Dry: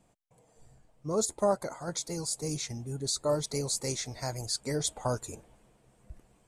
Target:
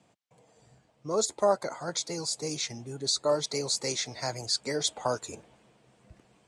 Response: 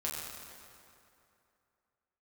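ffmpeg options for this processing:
-filter_complex "[0:a]highpass=110,lowpass=4.2k,highshelf=f=3.1k:g=10.5,acrossover=split=290|1500[a][b][c];[a]alimiter=level_in=16dB:limit=-24dB:level=0:latency=1:release=285,volume=-16dB[d];[d][b][c]amix=inputs=3:normalize=0,volume=2.5dB"

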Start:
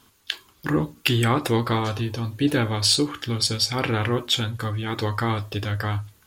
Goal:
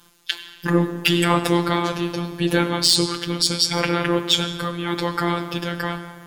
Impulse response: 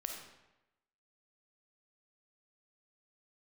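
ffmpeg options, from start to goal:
-filter_complex "[0:a]asplit=2[a][b];[1:a]atrim=start_sample=2205,asetrate=23373,aresample=44100,highshelf=f=5.7k:g=2[c];[b][c]afir=irnorm=-1:irlink=0,volume=-7.5dB[d];[a][d]amix=inputs=2:normalize=0,afftfilt=real='hypot(re,im)*cos(PI*b)':imag='0':win_size=1024:overlap=0.75,asoftclip=type=hard:threshold=-4.5dB,volume=3.5dB"

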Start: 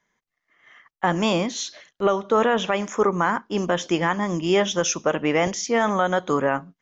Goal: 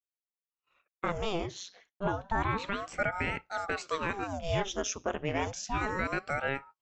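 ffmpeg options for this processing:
-filter_complex "[0:a]asettb=1/sr,asplit=3[a][b][c];[a]atrim=end=1.184[d];[b]atrim=start=1.18:end=2.88,asetpts=PTS-STARTPTS,afade=t=in:d=0.004:c=qsin,afade=t=out:st=1.696:d=0.004:c=qsin,highshelf=f=6.2k:g=-8[e];[c]atrim=start=2.876[f];[d][e]acrossfade=d=0.004:c1=hsin:c2=qsin[g];[g][f]acrossfade=d=0.004:c1=qsin:c2=hsin,agate=range=-33dB:threshold=-42dB:ratio=3:detection=peak,aeval=exprs='val(0)*sin(2*PI*600*n/s+600*0.85/0.3*sin(2*PI*0.3*n/s))':c=same,volume=-8dB"

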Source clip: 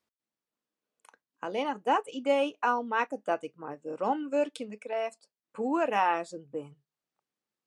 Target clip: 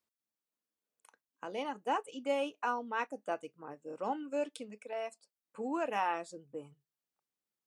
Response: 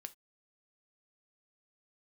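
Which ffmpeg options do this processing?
-af "highshelf=f=6.8k:g=7.5,volume=-7dB"

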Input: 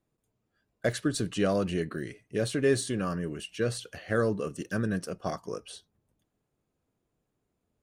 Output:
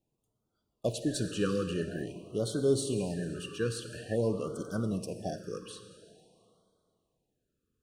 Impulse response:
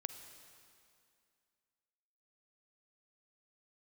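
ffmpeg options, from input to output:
-filter_complex "[0:a]asuperstop=centerf=2100:order=12:qfactor=3.7[a];[1:a]atrim=start_sample=2205[b];[a][b]afir=irnorm=-1:irlink=0,afftfilt=real='re*(1-between(b*sr/1024,740*pow(2200/740,0.5+0.5*sin(2*PI*0.48*pts/sr))/1.41,740*pow(2200/740,0.5+0.5*sin(2*PI*0.48*pts/sr))*1.41))':imag='im*(1-between(b*sr/1024,740*pow(2200/740,0.5+0.5*sin(2*PI*0.48*pts/sr))/1.41,740*pow(2200/740,0.5+0.5*sin(2*PI*0.48*pts/sr))*1.41))':win_size=1024:overlap=0.75"

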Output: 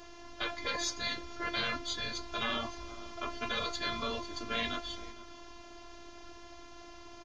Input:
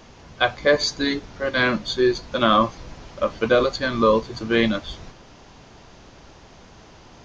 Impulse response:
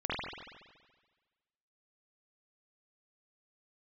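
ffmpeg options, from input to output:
-filter_complex "[0:a]afftfilt=real='hypot(re,im)*cos(PI*b)':imag='0':win_size=512:overlap=0.75,afftfilt=real='re*lt(hypot(re,im),0.158)':imag='im*lt(hypot(re,im),0.158)':win_size=1024:overlap=0.75,asplit=2[a][b];[b]adelay=460.6,volume=-19dB,highshelf=f=4k:g=-10.4[c];[a][c]amix=inputs=2:normalize=0"

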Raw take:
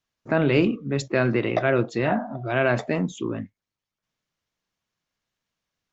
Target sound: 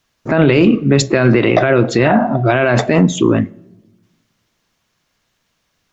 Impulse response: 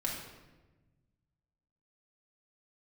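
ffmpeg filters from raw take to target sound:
-filter_complex "[0:a]asplit=2[a][b];[1:a]atrim=start_sample=2205,asetrate=57330,aresample=44100[c];[b][c]afir=irnorm=-1:irlink=0,volume=-22.5dB[d];[a][d]amix=inputs=2:normalize=0,alimiter=level_in=17.5dB:limit=-1dB:release=50:level=0:latency=1,volume=-1dB"

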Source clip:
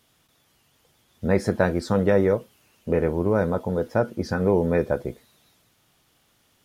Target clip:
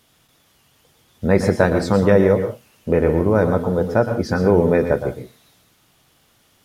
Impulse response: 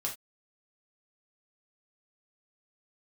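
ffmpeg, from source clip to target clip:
-filter_complex "[0:a]asplit=2[a][b];[1:a]atrim=start_sample=2205,adelay=114[c];[b][c]afir=irnorm=-1:irlink=0,volume=-9.5dB[d];[a][d]amix=inputs=2:normalize=0,volume=5dB"

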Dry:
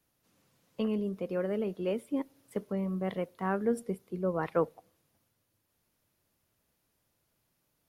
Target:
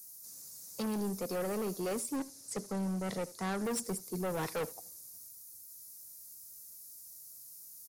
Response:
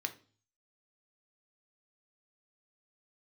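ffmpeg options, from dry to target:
-filter_complex "[0:a]acrossover=split=210[a][b];[b]aexciter=amount=15.9:drive=8.7:freq=4.9k[c];[a][c]amix=inputs=2:normalize=0,acrossover=split=6800[d][e];[e]acompressor=threshold=-48dB:ratio=4:attack=1:release=60[f];[d][f]amix=inputs=2:normalize=0,volume=33dB,asoftclip=hard,volume=-33dB,asettb=1/sr,asplit=3[g][h][i];[g]atrim=end=2.164[j];[h]atrim=start=2.16:end=3.65,asetpts=PTS-STARTPTS,afade=t=in:d=0.004:c=qsin,afade=t=out:st=1.486:d=0.004:c=qsin,lowpass=9k[k];[i]atrim=start=3.646[l];[j][k]acrossfade=d=0.004:c1=hsin:c2=qsin[m];[m][l]acrossfade=d=0.004:c1=qsin:c2=hsin,asplit=2[n][o];[o]aecho=0:1:78:0.0944[p];[n][p]amix=inputs=2:normalize=0,volume=1dB"

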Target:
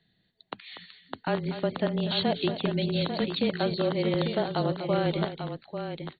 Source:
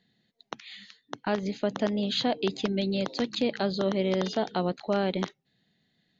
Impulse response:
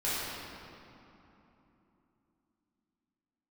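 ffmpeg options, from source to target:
-filter_complex "[0:a]asettb=1/sr,asplit=3[a][b][c];[a]atrim=end=3.704[d];[b]atrim=start=3.7:end=4.14,asetpts=PTS-STARTPTS,afade=t=in:d=0.004:c=qsin,afade=t=out:st=0.436:d=0.004:c=qsin,highpass=f=180:w=0.5412,highpass=f=180:w=1.3066[e];[c]atrim=start=4.136[f];[d][e]acrossfade=d=0.004:c1=hsin:c2=qsin[g];[g][f]acrossfade=d=0.004:c1=qsin:c2=hsin,aecho=1:1:241|844:0.266|0.398,afreqshift=-25" -ar 32000 -c:a ac3 -b:a 32k

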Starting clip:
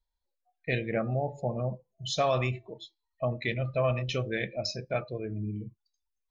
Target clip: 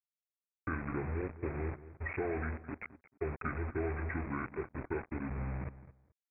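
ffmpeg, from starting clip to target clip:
-filter_complex "[0:a]agate=range=-33dB:threshold=-51dB:ratio=3:detection=peak,acompressor=threshold=-37dB:ratio=3,aresample=8000,acrusher=bits=6:mix=0:aa=0.000001,aresample=44100,asplit=2[a][b];[b]adelay=216,lowpass=f=3.1k:p=1,volume=-15dB,asplit=2[c][d];[d]adelay=216,lowpass=f=3.1k:p=1,volume=0.21[e];[a][c][e]amix=inputs=3:normalize=0,asetrate=27781,aresample=44100,atempo=1.5874,volume=1dB"

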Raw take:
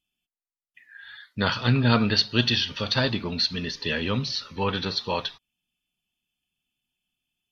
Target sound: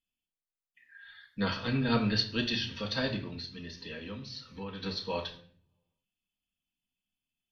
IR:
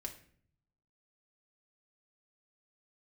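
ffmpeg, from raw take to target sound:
-filter_complex "[0:a]asettb=1/sr,asplit=3[a][b][c];[a]atrim=end=3.164[d];[b]atrim=start=3.16:end=4.83,asetpts=PTS-STARTPTS,afade=t=in:d=0.004:c=qsin,afade=t=out:st=1.666:d=0.004:c=qsin,acompressor=threshold=-35dB:ratio=2.5[e];[c]atrim=start=4.826[f];[d][e]acrossfade=d=0.004:c1=hsin:c2=qsin[g];[g][f]acrossfade=d=0.004:c1=qsin:c2=hsin[h];[1:a]atrim=start_sample=2205[i];[h][i]afir=irnorm=-1:irlink=0,volume=-5.5dB"

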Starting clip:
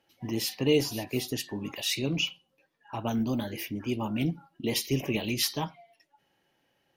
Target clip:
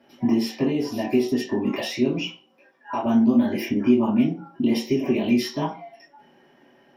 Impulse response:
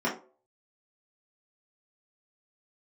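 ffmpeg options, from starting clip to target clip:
-filter_complex "[0:a]acompressor=threshold=-38dB:ratio=6,asettb=1/sr,asplit=3[a][b][c];[a]atrim=end=2.244[d];[b]atrim=start=2.24:end=3.06,asetpts=PTS-STARTPTS,afade=t=in:d=0.004:c=qsin,afade=t=out:st=0.816:d=0.004:c=qsin,highpass=f=470:p=1[e];[c]atrim=start=3.056[f];[d][e]acrossfade=d=0.004:c1=hsin:c2=qsin[g];[g][f]acrossfade=d=0.004:c1=qsin:c2=hsin[h];[1:a]atrim=start_sample=2205[i];[h][i]afir=irnorm=-1:irlink=0,volume=4.5dB"

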